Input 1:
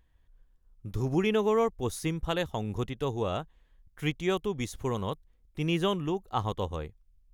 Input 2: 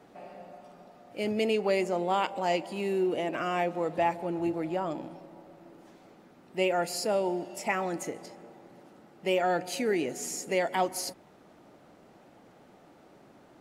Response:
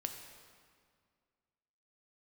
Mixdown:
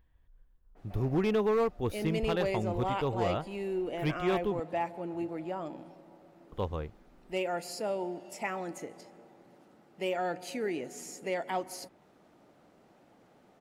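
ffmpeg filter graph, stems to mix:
-filter_complex "[0:a]equalizer=f=7400:t=o:w=1.4:g=-14.5,volume=0.944,asplit=3[s0][s1][s2];[s0]atrim=end=4.6,asetpts=PTS-STARTPTS,afade=t=out:st=4.596:d=0.004:c=hsin[s3];[s1]atrim=start=4.6:end=6.52,asetpts=PTS-STARTPTS,volume=0[s4];[s2]atrim=start=6.52,asetpts=PTS-STARTPTS,afade=t=in:d=0.004:c=hsin[s5];[s3][s4][s5]concat=n=3:v=0:a=1[s6];[1:a]adynamicequalizer=threshold=0.00398:dfrequency=3400:dqfactor=0.7:tfrequency=3400:tqfactor=0.7:attack=5:release=100:ratio=0.375:range=2:mode=cutabove:tftype=highshelf,adelay=750,volume=0.531[s7];[s6][s7]amix=inputs=2:normalize=0,asoftclip=type=hard:threshold=0.0794"

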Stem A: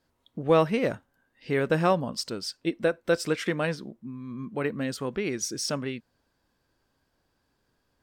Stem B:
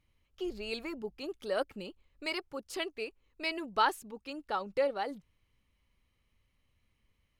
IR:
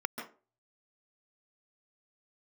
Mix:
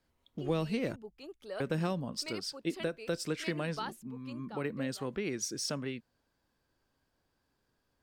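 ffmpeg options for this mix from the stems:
-filter_complex "[0:a]volume=0.562,asplit=3[s0][s1][s2];[s0]atrim=end=0.96,asetpts=PTS-STARTPTS,afade=t=out:st=0.956:d=0.004:c=hsin[s3];[s1]atrim=start=0.96:end=1.6,asetpts=PTS-STARTPTS,volume=0[s4];[s2]atrim=start=1.6,asetpts=PTS-STARTPTS,afade=t=in:d=0.004:c=hsin[s5];[s3][s4][s5]concat=n=3:v=0:a=1[s6];[1:a]volume=0.398,afade=t=out:st=4.33:d=0.33:silence=0.251189[s7];[s6][s7]amix=inputs=2:normalize=0,acrossover=split=320|3000[s8][s9][s10];[s9]acompressor=threshold=0.0178:ratio=6[s11];[s8][s11][s10]amix=inputs=3:normalize=0"

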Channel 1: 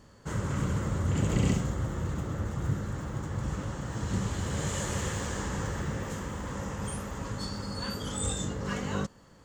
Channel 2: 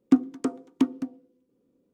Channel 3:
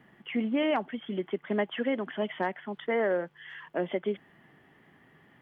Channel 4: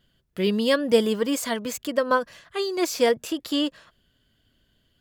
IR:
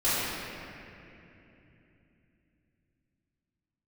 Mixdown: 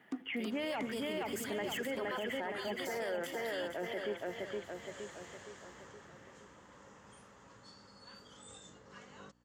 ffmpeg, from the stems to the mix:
-filter_complex "[0:a]lowpass=6800,aeval=exprs='val(0)+0.00891*(sin(2*PI*60*n/s)+sin(2*PI*2*60*n/s)/2+sin(2*PI*3*60*n/s)/3+sin(2*PI*4*60*n/s)/4+sin(2*PI*5*60*n/s)/5)':c=same,adelay=250,volume=0.15[s0];[1:a]volume=0.2[s1];[2:a]bandreject=f=1100:w=7.8,alimiter=limit=0.075:level=0:latency=1,volume=0.944,asplit=2[s2][s3];[s3]volume=0.631[s4];[3:a]highshelf=f=7400:g=9.5,volume=0.119,asplit=2[s5][s6];[s6]volume=0.299[s7];[s4][s7]amix=inputs=2:normalize=0,aecho=0:1:467|934|1401|1868|2335|2802|3269|3736:1|0.52|0.27|0.141|0.0731|0.038|0.0198|0.0103[s8];[s0][s1][s2][s5][s8]amix=inputs=5:normalize=0,highpass=f=510:p=1,alimiter=level_in=1.88:limit=0.0631:level=0:latency=1:release=11,volume=0.531"

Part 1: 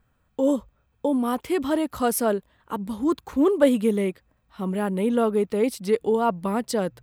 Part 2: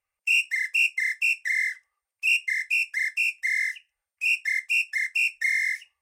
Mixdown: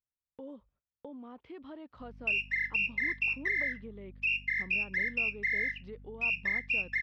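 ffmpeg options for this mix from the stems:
-filter_complex "[0:a]deesser=0.85,agate=range=0.0891:threshold=0.00355:ratio=16:detection=peak,acompressor=threshold=0.0398:ratio=2.5,volume=0.133[s0];[1:a]acompressor=threshold=0.0447:ratio=6,aeval=exprs='val(0)+0.00355*(sin(2*PI*50*n/s)+sin(2*PI*2*50*n/s)/2+sin(2*PI*3*50*n/s)/3+sin(2*PI*4*50*n/s)/4+sin(2*PI*5*50*n/s)/5)':c=same,adelay=2000,volume=0.891[s1];[s0][s1]amix=inputs=2:normalize=0,lowpass=f=3900:w=0.5412,lowpass=f=3900:w=1.3066"

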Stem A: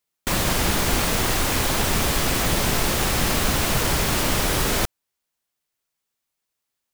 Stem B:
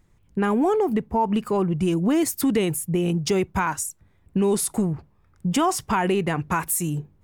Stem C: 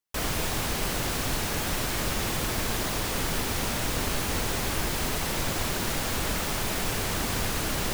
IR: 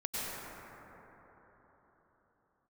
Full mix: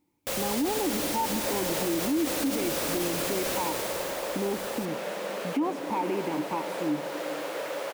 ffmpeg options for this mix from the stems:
-filter_complex "[0:a]highpass=f=120:p=1,aeval=exprs='0.0562*(abs(mod(val(0)/0.0562+3,4)-2)-1)':c=same,volume=0.75,afade=t=out:st=3.49:d=0.72:silence=0.334965[s0];[1:a]asplit=3[s1][s2][s3];[s1]bandpass=f=300:t=q:w=8,volume=1[s4];[s2]bandpass=f=870:t=q:w=8,volume=0.501[s5];[s3]bandpass=f=2240:t=q:w=8,volume=0.355[s6];[s4][s5][s6]amix=inputs=3:normalize=0,volume=1.33,asplit=3[s7][s8][s9];[s8]volume=0.168[s10];[2:a]acrossover=split=3400[s11][s12];[s12]acompressor=threshold=0.01:ratio=4:attack=1:release=60[s13];[s11][s13]amix=inputs=2:normalize=0,highpass=f=360:w=0.5412,highpass=f=360:w=1.3066,adelay=1300,volume=0.422,asplit=2[s14][s15];[s15]volume=0.299[s16];[s9]apad=whole_len=407132[s17];[s14][s17]sidechaincompress=threshold=0.0282:ratio=8:attack=16:release=511[s18];[3:a]atrim=start_sample=2205[s19];[s10][s16]amix=inputs=2:normalize=0[s20];[s20][s19]afir=irnorm=-1:irlink=0[s21];[s0][s7][s18][s21]amix=inputs=4:normalize=0,equalizer=f=540:t=o:w=0.43:g=14,alimiter=limit=0.106:level=0:latency=1:release=37"

